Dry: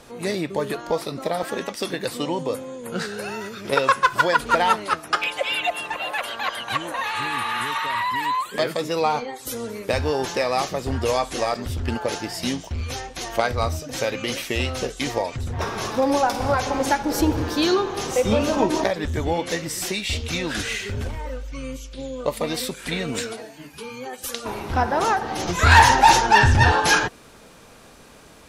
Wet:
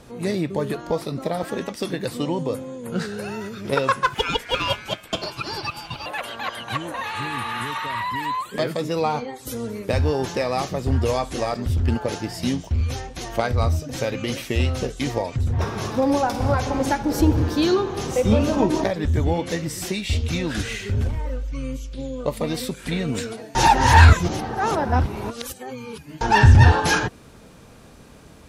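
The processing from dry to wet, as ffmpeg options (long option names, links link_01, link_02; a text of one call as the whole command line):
ffmpeg -i in.wav -filter_complex "[0:a]asettb=1/sr,asplit=3[link_01][link_02][link_03];[link_01]atrim=end=4.144[link_04];[link_02]atrim=start=4.14:end=6.06,asetpts=PTS-STARTPTS,afade=type=in:duration=0.004:curve=qsin,afade=type=out:start_time=1.916:duration=0.004:curve=qsin,aeval=exprs='val(0)*sin(2*PI*1900*n/s)':channel_layout=same[link_05];[link_03]atrim=start=6.056[link_06];[link_04][link_05]acrossfade=duration=0.004:curve1=hsin:curve2=qsin[link_07];[link_07][link_06]acrossfade=duration=0.004:curve1=qsin:curve2=hsin,asplit=3[link_08][link_09][link_10];[link_08]atrim=end=23.552[link_11];[link_09]atrim=start=23.548:end=26.212,asetpts=PTS-STARTPTS,areverse[link_12];[link_10]atrim=start=26.208[link_13];[link_11][link_12]acrossfade=duration=0.004:curve1=hsin:curve2=hsin[link_14];[link_14][link_13]acrossfade=duration=0.004:curve1=hsin:curve2=hsin,equalizer=frequency=90:width=0.31:gain=10.5,volume=-3.5dB" out.wav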